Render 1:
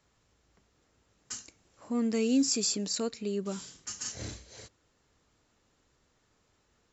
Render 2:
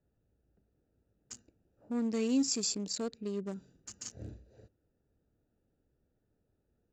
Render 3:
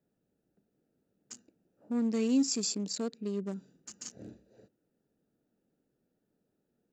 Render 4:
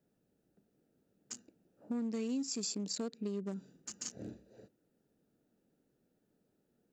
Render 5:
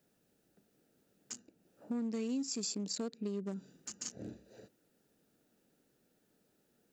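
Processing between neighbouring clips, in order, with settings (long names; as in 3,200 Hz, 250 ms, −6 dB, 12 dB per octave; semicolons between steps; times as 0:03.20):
adaptive Wiener filter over 41 samples; level −3 dB
low shelf with overshoot 120 Hz −14 dB, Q 1.5
downward compressor 5 to 1, threshold −37 dBFS, peak gain reduction 13 dB; level +2 dB
one half of a high-frequency compander encoder only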